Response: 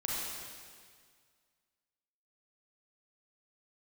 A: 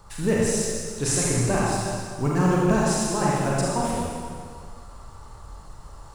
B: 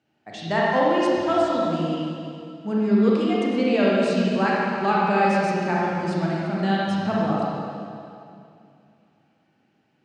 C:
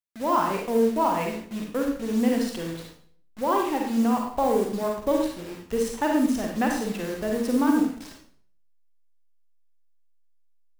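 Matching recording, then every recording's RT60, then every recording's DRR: A; 1.9, 2.4, 0.60 s; -5.5, -6.0, 0.5 dB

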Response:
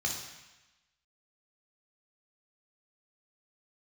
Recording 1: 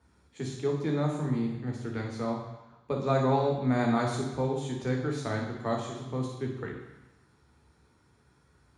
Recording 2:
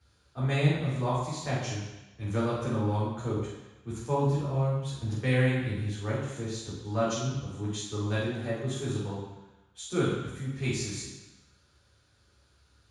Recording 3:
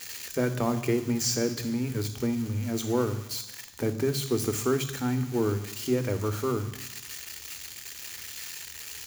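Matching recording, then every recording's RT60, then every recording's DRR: 1; 1.0, 1.0, 1.0 s; 0.0, -8.5, 9.5 dB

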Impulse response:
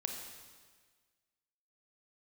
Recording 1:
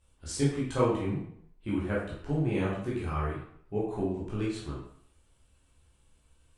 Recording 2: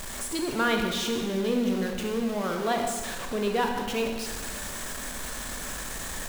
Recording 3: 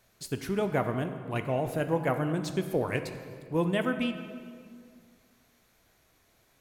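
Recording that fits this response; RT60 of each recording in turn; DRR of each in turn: 2; 0.65, 1.5, 2.1 s; -7.0, 2.5, 7.5 dB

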